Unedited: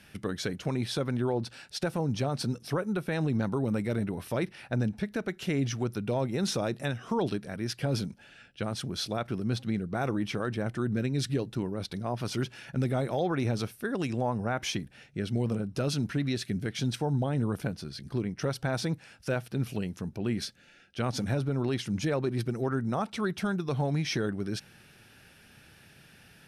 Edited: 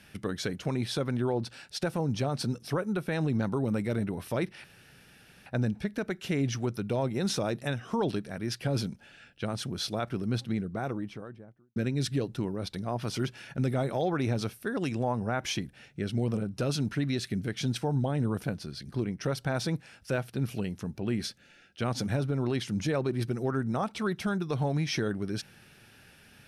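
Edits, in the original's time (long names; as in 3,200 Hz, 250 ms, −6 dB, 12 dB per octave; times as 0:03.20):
0:04.64: splice in room tone 0.82 s
0:09.55–0:10.94: fade out and dull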